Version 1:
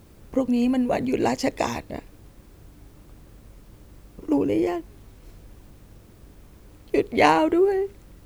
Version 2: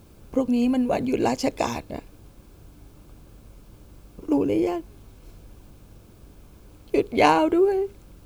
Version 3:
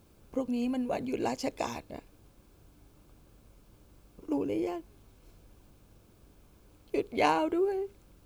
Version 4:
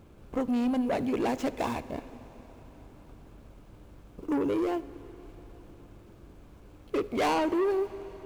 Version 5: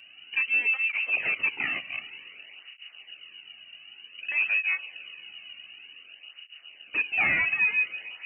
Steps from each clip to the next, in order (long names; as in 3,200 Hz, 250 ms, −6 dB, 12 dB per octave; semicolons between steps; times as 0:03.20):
notch filter 1,900 Hz, Q 6.1
low-shelf EQ 260 Hz −3.5 dB; level −8 dB
running median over 9 samples; soft clipping −31 dBFS, distortion −9 dB; on a send at −15 dB: convolution reverb RT60 4.8 s, pre-delay 7 ms; on the sum: level +7.5 dB
voice inversion scrambler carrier 2,900 Hz; through-zero flanger with one copy inverted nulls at 0.54 Hz, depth 2.4 ms; level +4.5 dB